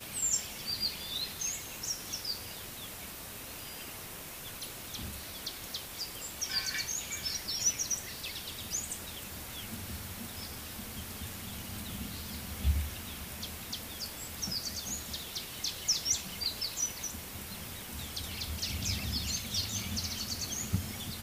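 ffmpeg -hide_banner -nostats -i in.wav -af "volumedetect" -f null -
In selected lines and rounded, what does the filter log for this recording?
mean_volume: -37.7 dB
max_volume: -16.0 dB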